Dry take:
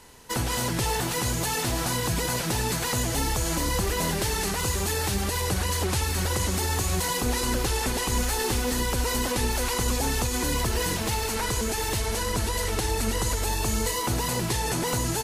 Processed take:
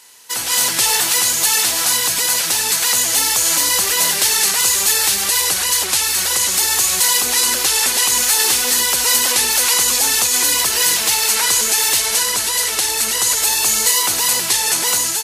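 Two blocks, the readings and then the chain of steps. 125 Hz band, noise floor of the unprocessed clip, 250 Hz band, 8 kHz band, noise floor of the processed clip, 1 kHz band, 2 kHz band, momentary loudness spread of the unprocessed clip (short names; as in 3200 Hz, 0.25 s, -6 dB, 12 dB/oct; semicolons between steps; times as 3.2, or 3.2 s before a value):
under -10 dB, -29 dBFS, -5.0 dB, +16.5 dB, -21 dBFS, +5.5 dB, +10.5 dB, 1 LU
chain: HPF 980 Hz 6 dB/oct; high shelf 2100 Hz +10.5 dB; AGC gain up to 10 dB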